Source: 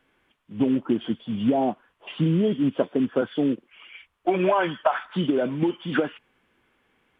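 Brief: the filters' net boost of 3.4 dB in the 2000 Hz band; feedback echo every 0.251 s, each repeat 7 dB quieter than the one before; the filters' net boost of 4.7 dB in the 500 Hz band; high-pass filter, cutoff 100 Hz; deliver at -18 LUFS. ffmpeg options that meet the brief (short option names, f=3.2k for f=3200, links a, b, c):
-af "highpass=100,equalizer=f=500:t=o:g=6,equalizer=f=2k:t=o:g=4.5,aecho=1:1:251|502|753|1004|1255:0.447|0.201|0.0905|0.0407|0.0183,volume=3.5dB"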